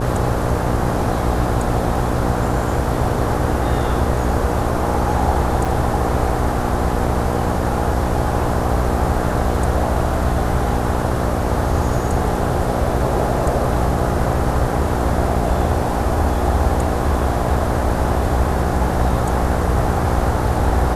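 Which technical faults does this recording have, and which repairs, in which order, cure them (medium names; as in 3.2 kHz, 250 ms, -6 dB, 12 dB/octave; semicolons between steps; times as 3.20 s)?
buzz 60 Hz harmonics 12 -22 dBFS
5.65–5.66 s: dropout 5.4 ms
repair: de-hum 60 Hz, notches 12; interpolate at 5.65 s, 5.4 ms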